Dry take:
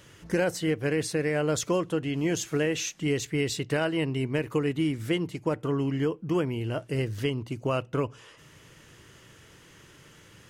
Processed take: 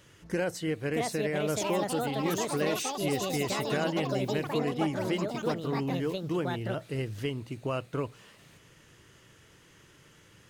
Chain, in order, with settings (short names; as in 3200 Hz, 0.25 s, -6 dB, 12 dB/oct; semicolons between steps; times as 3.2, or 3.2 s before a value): echoes that change speed 0.713 s, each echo +5 st, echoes 3; gain -4.5 dB